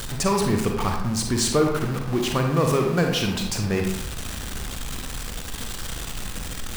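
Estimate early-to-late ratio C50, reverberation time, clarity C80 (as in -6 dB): 4.0 dB, 0.85 s, 6.5 dB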